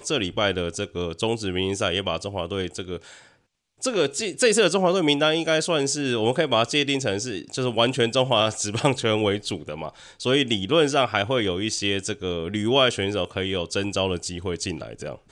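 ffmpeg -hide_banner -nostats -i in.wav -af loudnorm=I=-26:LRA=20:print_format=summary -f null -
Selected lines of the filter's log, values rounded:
Input Integrated:    -23.5 LUFS
Input True Peak:      -5.2 dBTP
Input LRA:             3.1 LU
Input Threshold:     -33.9 LUFS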